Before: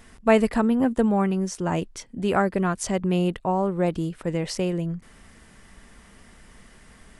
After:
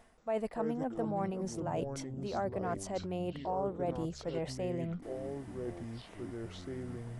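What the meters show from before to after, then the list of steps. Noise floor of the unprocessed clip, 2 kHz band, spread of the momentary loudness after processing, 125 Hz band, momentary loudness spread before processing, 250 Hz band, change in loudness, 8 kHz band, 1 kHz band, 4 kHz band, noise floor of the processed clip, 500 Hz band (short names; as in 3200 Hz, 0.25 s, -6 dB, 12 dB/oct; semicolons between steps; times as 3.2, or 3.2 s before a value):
-52 dBFS, -17.0 dB, 8 LU, -11.0 dB, 9 LU, -14.0 dB, -13.5 dB, -13.0 dB, -11.0 dB, -12.0 dB, -52 dBFS, -10.5 dB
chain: bell 680 Hz +12.5 dB 1.1 oct; reverse; compressor 4:1, threshold -27 dBFS, peak gain reduction 19.5 dB; reverse; echoes that change speed 0.178 s, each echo -6 st, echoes 3, each echo -6 dB; gain -8 dB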